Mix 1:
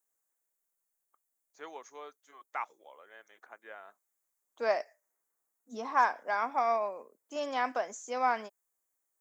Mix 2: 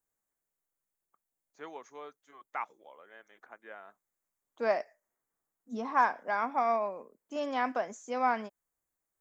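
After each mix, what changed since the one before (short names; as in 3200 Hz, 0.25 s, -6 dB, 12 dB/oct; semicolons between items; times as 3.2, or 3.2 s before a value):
master: add tone controls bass +12 dB, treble -6 dB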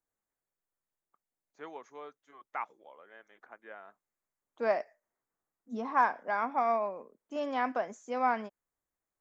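master: add high shelf 5500 Hz -9.5 dB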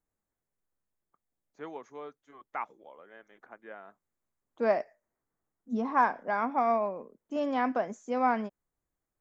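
master: add low shelf 350 Hz +10.5 dB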